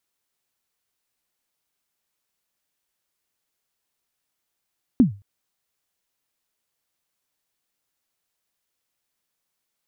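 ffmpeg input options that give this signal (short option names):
-f lavfi -i "aevalsrc='0.447*pow(10,-3*t/0.3)*sin(2*PI*(280*0.121/log(100/280)*(exp(log(100/280)*min(t,0.121)/0.121)-1)+100*max(t-0.121,0)))':d=0.22:s=44100"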